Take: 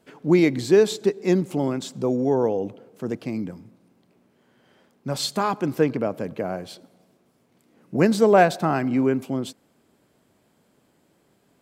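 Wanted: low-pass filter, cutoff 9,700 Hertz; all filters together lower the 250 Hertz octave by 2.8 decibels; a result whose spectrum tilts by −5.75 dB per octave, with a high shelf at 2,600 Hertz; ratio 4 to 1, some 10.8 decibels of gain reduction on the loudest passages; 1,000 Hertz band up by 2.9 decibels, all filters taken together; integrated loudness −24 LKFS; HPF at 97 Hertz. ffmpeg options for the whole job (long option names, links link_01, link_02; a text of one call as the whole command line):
ffmpeg -i in.wav -af "highpass=97,lowpass=9700,equalizer=frequency=250:width_type=o:gain=-4,equalizer=frequency=1000:width_type=o:gain=6,highshelf=frequency=2600:gain=-9,acompressor=threshold=-23dB:ratio=4,volume=5.5dB" out.wav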